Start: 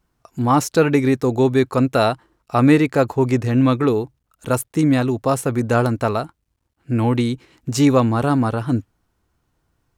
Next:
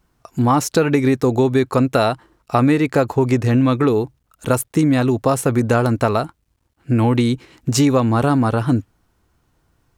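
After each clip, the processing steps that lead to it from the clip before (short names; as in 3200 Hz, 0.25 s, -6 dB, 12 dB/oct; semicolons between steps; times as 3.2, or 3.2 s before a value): compressor 4:1, threshold -18 dBFS, peak gain reduction 9 dB; gain +5.5 dB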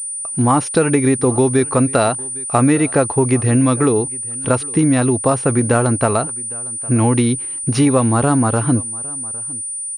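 echo 0.808 s -22.5 dB; pulse-width modulation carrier 9300 Hz; gain +1 dB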